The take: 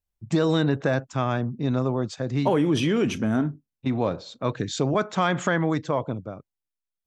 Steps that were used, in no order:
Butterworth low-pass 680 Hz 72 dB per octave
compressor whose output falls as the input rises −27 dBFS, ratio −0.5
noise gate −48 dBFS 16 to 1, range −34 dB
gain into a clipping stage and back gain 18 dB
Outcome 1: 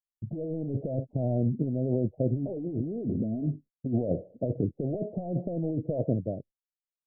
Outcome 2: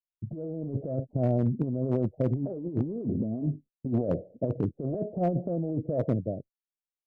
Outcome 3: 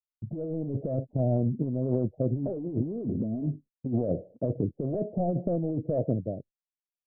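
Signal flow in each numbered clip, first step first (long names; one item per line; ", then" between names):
gain into a clipping stage and back, then compressor whose output falls as the input rises, then noise gate, then Butterworth low-pass
noise gate, then Butterworth low-pass, then compressor whose output falls as the input rises, then gain into a clipping stage and back
gain into a clipping stage and back, then Butterworth low-pass, then compressor whose output falls as the input rises, then noise gate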